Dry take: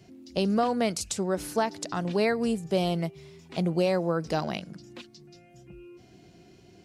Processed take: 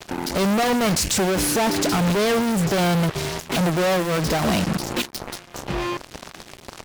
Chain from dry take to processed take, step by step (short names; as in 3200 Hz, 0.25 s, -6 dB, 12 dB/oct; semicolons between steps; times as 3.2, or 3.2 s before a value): fuzz box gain 46 dB, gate -52 dBFS; added harmonics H 7 -9 dB, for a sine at -9.5 dBFS; gain -8.5 dB